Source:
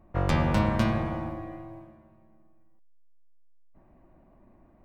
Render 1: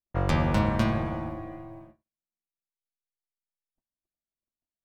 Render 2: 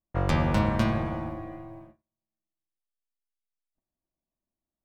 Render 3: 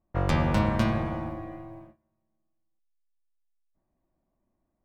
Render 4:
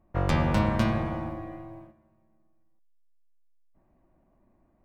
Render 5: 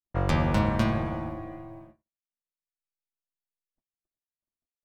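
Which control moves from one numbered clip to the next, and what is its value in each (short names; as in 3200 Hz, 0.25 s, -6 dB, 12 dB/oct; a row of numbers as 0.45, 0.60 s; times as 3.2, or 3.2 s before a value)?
gate, range: -47, -35, -20, -8, -60 dB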